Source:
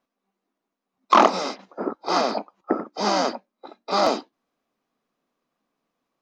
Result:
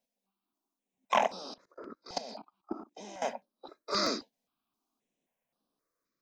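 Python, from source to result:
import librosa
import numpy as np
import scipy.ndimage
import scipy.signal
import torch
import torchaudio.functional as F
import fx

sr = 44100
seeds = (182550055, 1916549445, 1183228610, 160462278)

y = fx.high_shelf(x, sr, hz=4700.0, db=9.5)
y = fx.level_steps(y, sr, step_db=18, at=(1.18, 3.22))
y = fx.phaser_held(y, sr, hz=3.8, low_hz=330.0, high_hz=7200.0)
y = y * librosa.db_to_amplitude(-6.0)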